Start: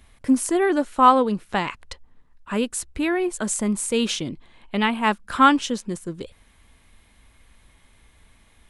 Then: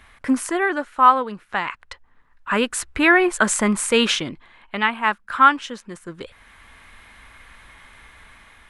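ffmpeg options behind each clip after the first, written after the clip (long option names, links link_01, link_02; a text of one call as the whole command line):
ffmpeg -i in.wav -af "equalizer=frequency=1500:width=0.61:gain=14.5,dynaudnorm=framelen=310:gausssize=5:maxgain=4dB,volume=-1dB" out.wav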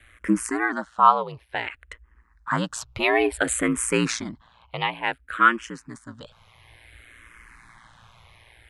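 ffmpeg -i in.wav -filter_complex "[0:a]aeval=exprs='val(0)*sin(2*PI*58*n/s)':channel_layout=same,asplit=2[link_01][link_02];[link_02]afreqshift=-0.57[link_03];[link_01][link_03]amix=inputs=2:normalize=1,volume=2dB" out.wav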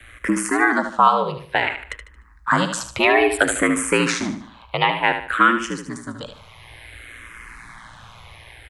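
ffmpeg -i in.wav -filter_complex "[0:a]acrossover=split=150|580|2400[link_01][link_02][link_03][link_04];[link_01]acompressor=threshold=-52dB:ratio=4[link_05];[link_02]acompressor=threshold=-30dB:ratio=4[link_06];[link_03]acompressor=threshold=-24dB:ratio=4[link_07];[link_04]acompressor=threshold=-35dB:ratio=4[link_08];[link_05][link_06][link_07][link_08]amix=inputs=4:normalize=0,asplit=2[link_09][link_10];[link_10]aecho=0:1:75|150|225|300:0.376|0.132|0.046|0.0161[link_11];[link_09][link_11]amix=inputs=2:normalize=0,volume=9dB" out.wav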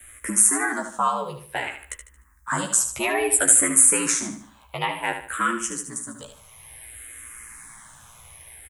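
ffmpeg -i in.wav -filter_complex "[0:a]asplit=2[link_01][link_02];[link_02]adelay=14,volume=-4dB[link_03];[link_01][link_03]amix=inputs=2:normalize=0,aexciter=amount=14:drive=2.9:freq=6400,volume=-9.5dB" out.wav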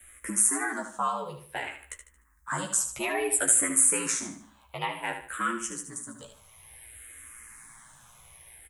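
ffmpeg -i in.wav -af "flanger=delay=5.3:depth=6.6:regen=-58:speed=0.36:shape=sinusoidal,volume=-2dB" out.wav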